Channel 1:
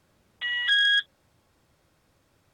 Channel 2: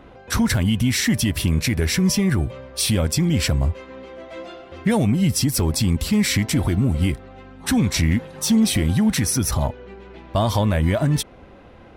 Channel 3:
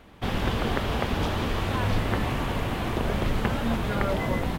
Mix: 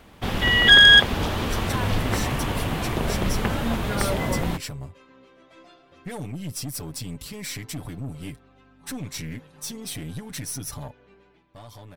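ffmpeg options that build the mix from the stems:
ffmpeg -i stem1.wav -i stem2.wav -i stem3.wav -filter_complex "[0:a]dynaudnorm=framelen=310:gausssize=3:maxgain=8.5dB,volume=1dB[link_01];[1:a]aecho=1:1:6.9:0.73,aeval=exprs='(tanh(5.62*val(0)+0.45)-tanh(0.45))/5.62':channel_layout=same,adelay=1200,volume=-13dB,afade=type=out:start_time=11.18:duration=0.28:silence=0.316228[link_02];[2:a]volume=1dB[link_03];[link_01][link_02][link_03]amix=inputs=3:normalize=0,highshelf=frequency=4700:gain=5.5" out.wav

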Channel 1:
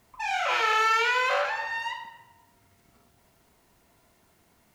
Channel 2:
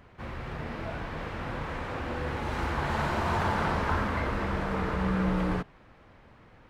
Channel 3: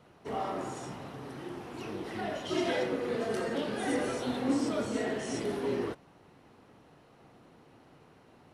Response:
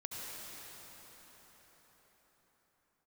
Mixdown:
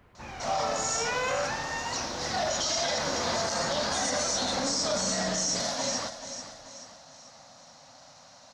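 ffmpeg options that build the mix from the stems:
-filter_complex "[0:a]equalizer=frequency=430:width=2:gain=10,volume=-5dB,afade=type=in:start_time=0.9:duration=0.34:silence=0.251189[link_01];[1:a]acrossover=split=130[link_02][link_03];[link_02]acompressor=threshold=-44dB:ratio=6[link_04];[link_04][link_03]amix=inputs=2:normalize=0,volume=-4.5dB[link_05];[2:a]aexciter=amount=10.9:drive=3.4:freq=4200,firequalizer=gain_entry='entry(270,0);entry(390,-24);entry(550,12);entry(1000,9);entry(6500,9);entry(9800,-20)':delay=0.05:min_phase=1,adelay=150,volume=-3dB,asplit=2[link_06][link_07];[link_07]volume=-12dB,aecho=0:1:435|870|1305|1740|2175|2610:1|0.44|0.194|0.0852|0.0375|0.0165[link_08];[link_01][link_05][link_06][link_08]amix=inputs=4:normalize=0,alimiter=limit=-19.5dB:level=0:latency=1:release=30"

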